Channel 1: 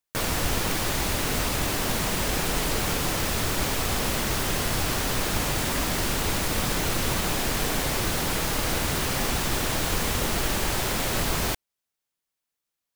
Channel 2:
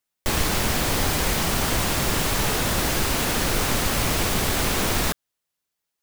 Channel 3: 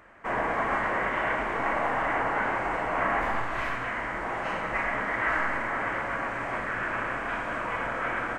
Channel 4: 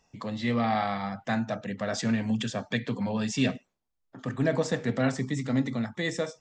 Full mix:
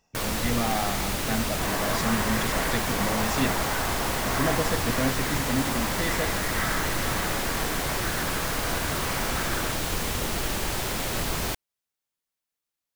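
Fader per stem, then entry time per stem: -2.5 dB, mute, -3.5 dB, -1.5 dB; 0.00 s, mute, 1.35 s, 0.00 s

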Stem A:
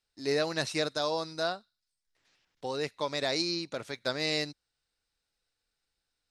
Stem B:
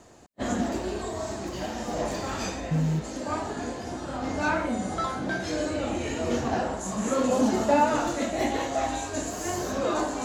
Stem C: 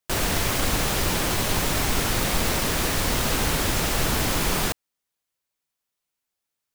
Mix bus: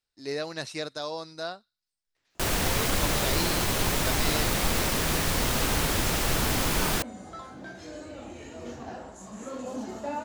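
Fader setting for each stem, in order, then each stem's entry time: -3.5 dB, -12.5 dB, -2.5 dB; 0.00 s, 2.35 s, 2.30 s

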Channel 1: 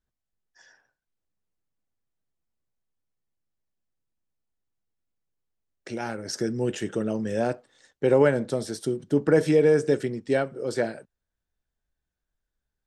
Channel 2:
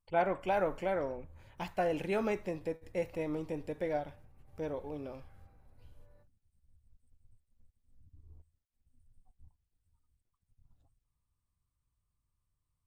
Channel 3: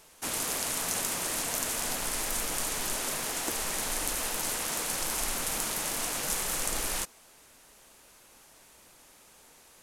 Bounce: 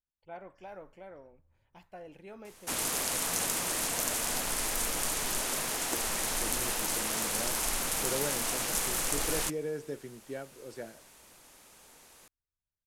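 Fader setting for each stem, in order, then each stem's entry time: -16.5 dB, -15.5 dB, 0.0 dB; 0.00 s, 0.15 s, 2.45 s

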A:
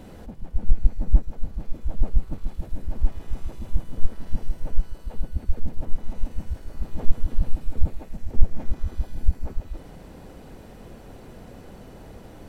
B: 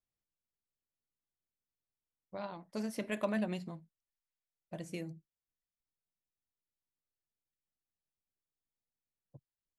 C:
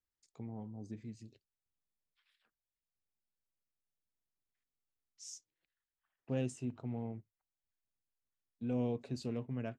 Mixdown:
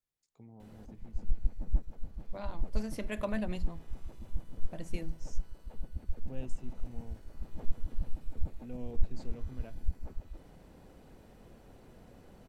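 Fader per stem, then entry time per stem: -12.0 dB, -1.0 dB, -8.5 dB; 0.60 s, 0.00 s, 0.00 s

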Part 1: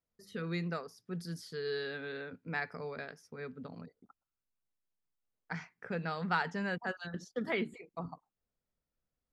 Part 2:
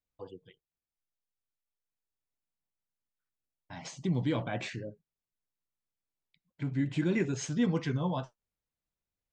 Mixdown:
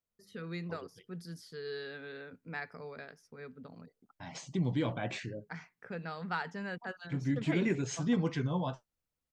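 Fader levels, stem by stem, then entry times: -4.0 dB, -1.5 dB; 0.00 s, 0.50 s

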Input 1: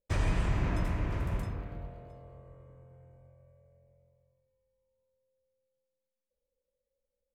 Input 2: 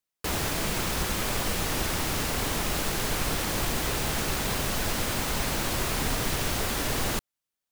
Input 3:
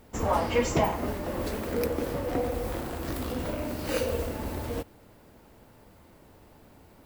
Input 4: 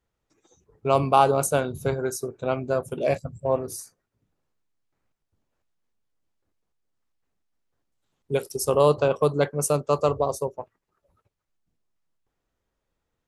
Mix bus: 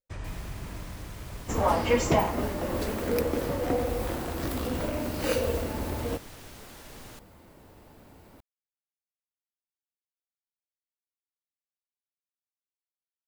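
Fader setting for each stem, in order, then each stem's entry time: -9.0 dB, -19.0 dB, +1.5 dB, mute; 0.00 s, 0.00 s, 1.35 s, mute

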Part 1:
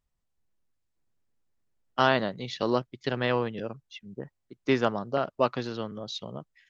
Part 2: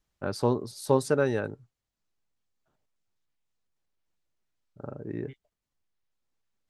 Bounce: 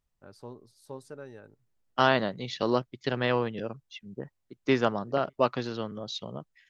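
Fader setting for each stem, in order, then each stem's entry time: 0.0 dB, -19.0 dB; 0.00 s, 0.00 s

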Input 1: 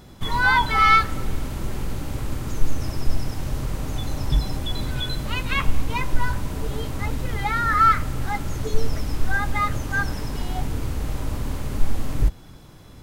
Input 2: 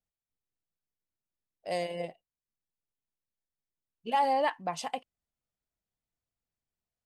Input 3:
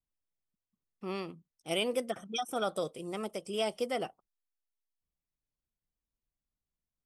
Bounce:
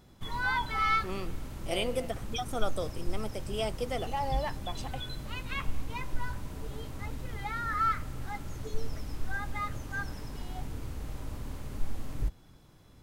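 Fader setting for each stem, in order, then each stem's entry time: -12.0 dB, -7.0 dB, -1.0 dB; 0.00 s, 0.00 s, 0.00 s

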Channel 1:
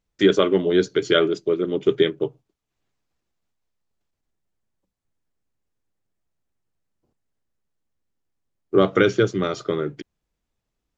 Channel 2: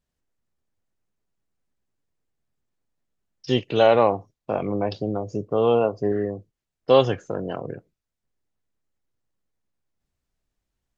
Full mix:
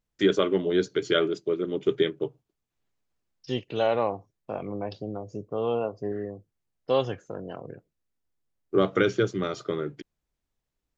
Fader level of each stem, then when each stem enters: -5.5 dB, -8.0 dB; 0.00 s, 0.00 s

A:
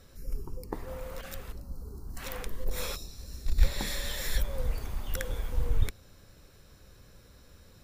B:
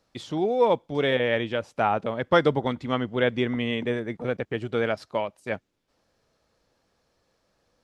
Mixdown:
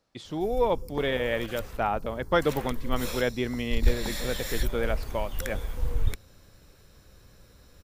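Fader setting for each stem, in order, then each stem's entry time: +0.5 dB, -4.0 dB; 0.25 s, 0.00 s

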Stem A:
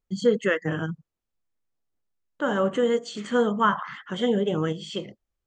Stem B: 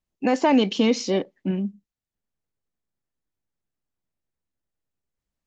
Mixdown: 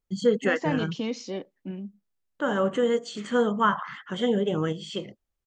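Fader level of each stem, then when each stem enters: -1.0 dB, -10.5 dB; 0.00 s, 0.20 s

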